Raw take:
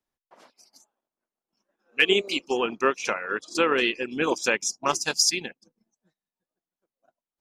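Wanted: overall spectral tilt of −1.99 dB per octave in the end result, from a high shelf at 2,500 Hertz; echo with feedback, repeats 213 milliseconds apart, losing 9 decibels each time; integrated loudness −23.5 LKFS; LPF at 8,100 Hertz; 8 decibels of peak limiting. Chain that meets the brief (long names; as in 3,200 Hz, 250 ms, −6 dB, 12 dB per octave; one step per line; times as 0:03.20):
low-pass filter 8,100 Hz
high-shelf EQ 2,500 Hz −3.5 dB
brickwall limiter −17 dBFS
repeating echo 213 ms, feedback 35%, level −9 dB
level +5.5 dB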